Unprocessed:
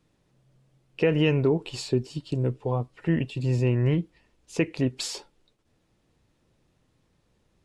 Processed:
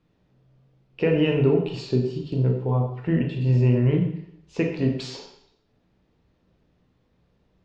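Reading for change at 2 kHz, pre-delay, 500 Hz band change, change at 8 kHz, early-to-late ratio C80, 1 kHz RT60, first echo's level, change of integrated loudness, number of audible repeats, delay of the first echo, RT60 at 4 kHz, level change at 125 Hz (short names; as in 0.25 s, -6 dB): -0.5 dB, 13 ms, +2.5 dB, under -10 dB, 8.5 dB, 0.70 s, none, +3.5 dB, none, none, 0.70 s, +4.0 dB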